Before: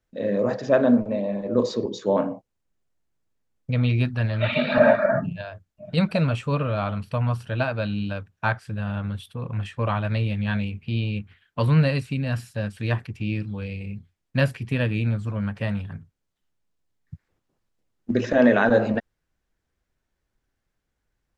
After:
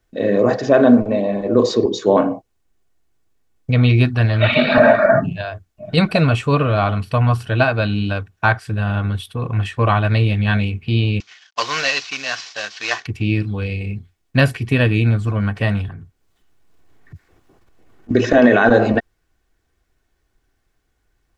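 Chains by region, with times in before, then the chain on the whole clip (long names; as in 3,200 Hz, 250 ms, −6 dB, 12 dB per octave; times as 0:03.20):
0:11.20–0:13.06: variable-slope delta modulation 32 kbit/s + high-pass filter 770 Hz + high-shelf EQ 2,700 Hz +9.5 dB
0:15.88–0:18.11: transient designer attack −9 dB, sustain +5 dB + multiband upward and downward compressor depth 70%
whole clip: comb filter 2.7 ms, depth 37%; boost into a limiter +10 dB; level −1 dB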